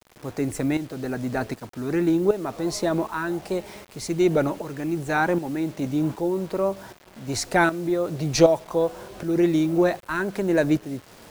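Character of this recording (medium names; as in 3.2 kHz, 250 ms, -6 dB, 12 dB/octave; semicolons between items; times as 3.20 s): tremolo saw up 1.3 Hz, depth 70%; a quantiser's noise floor 8-bit, dither none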